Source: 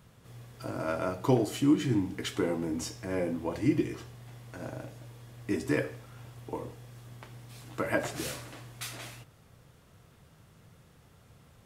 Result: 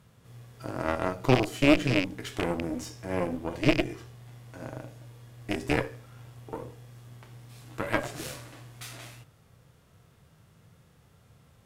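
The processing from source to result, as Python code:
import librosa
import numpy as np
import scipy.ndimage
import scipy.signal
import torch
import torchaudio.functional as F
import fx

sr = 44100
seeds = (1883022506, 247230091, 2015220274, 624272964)

y = fx.rattle_buzz(x, sr, strikes_db=-30.0, level_db=-19.0)
y = fx.hpss(y, sr, part='percussive', gain_db=-6)
y = fx.cheby_harmonics(y, sr, harmonics=(3, 4, 5), levels_db=(-16, -10, -33), full_scale_db=-13.0)
y = F.gain(torch.from_numpy(y), 4.5).numpy()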